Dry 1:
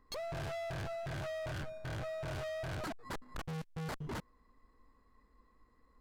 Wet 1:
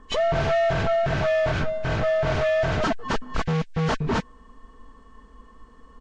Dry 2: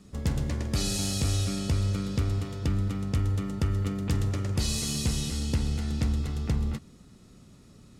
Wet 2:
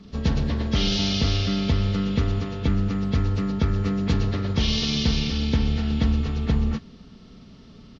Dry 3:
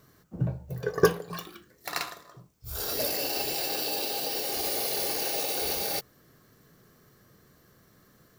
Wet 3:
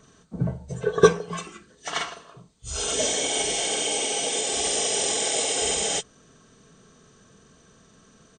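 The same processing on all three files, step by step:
knee-point frequency compression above 1.5 kHz 1.5:1; comb 4.5 ms, depth 38%; normalise loudness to -24 LUFS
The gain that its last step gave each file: +17.0 dB, +6.0 dB, +4.5 dB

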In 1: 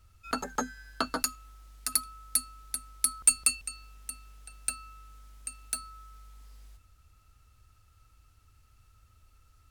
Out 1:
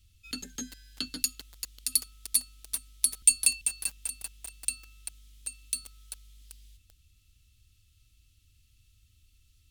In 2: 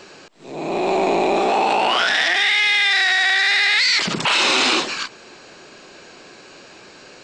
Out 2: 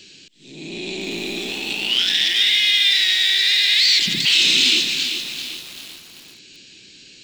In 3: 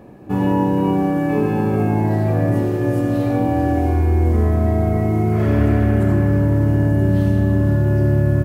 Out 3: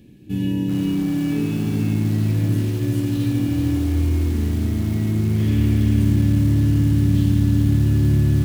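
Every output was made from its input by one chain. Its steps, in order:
FFT filter 120 Hz 0 dB, 300 Hz -2 dB, 680 Hz -23 dB, 1.2 kHz -24 dB, 1.7 kHz -9 dB, 3.3 kHz +9 dB, 4.8 kHz +4 dB; bit-crushed delay 390 ms, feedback 55%, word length 5-bit, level -7.5 dB; trim -2.5 dB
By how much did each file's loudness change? +1.5 LU, +1.0 LU, -2.0 LU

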